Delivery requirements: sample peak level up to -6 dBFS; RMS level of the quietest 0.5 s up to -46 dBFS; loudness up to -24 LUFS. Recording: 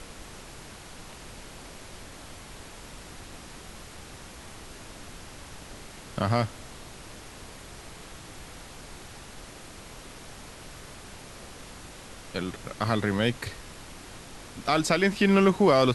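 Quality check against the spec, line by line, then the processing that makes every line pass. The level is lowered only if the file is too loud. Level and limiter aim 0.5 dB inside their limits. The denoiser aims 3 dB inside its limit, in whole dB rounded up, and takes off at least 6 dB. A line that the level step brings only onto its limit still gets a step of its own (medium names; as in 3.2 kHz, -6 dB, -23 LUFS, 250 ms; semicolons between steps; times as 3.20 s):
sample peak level -8.0 dBFS: pass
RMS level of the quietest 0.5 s -45 dBFS: fail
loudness -25.5 LUFS: pass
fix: noise reduction 6 dB, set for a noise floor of -45 dBFS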